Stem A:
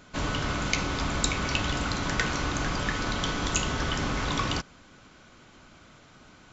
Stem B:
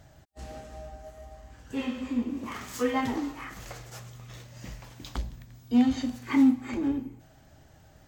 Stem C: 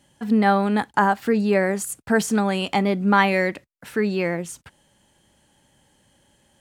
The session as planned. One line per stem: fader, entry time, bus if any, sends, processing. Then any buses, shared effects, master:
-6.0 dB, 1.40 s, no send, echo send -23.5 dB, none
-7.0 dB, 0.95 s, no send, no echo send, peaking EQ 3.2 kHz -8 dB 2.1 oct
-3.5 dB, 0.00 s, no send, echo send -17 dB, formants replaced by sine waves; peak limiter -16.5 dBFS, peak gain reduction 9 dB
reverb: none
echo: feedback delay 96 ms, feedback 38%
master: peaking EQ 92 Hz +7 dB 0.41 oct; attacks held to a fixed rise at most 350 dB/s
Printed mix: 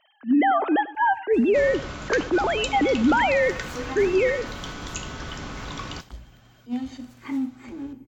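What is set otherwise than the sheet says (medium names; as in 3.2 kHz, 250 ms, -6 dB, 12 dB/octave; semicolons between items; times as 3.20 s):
stem B: missing peaking EQ 3.2 kHz -8 dB 2.1 oct; stem C -3.5 dB -> +3.0 dB; master: missing peaking EQ 92 Hz +7 dB 0.41 oct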